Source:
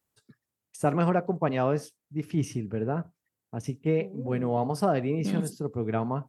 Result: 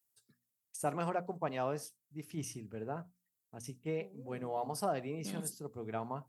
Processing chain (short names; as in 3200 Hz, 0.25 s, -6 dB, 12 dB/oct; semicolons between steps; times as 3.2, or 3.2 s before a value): pre-emphasis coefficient 0.8; notches 60/120/180/240 Hz; dynamic EQ 810 Hz, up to +6 dB, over -53 dBFS, Q 1